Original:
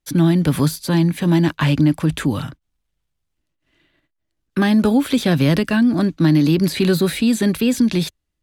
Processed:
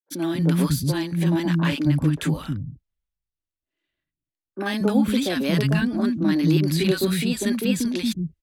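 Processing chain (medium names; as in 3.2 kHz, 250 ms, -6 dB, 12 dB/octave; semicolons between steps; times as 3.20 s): three bands offset in time mids, highs, lows 40/230 ms, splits 250/920 Hz; three bands expanded up and down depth 40%; trim -3 dB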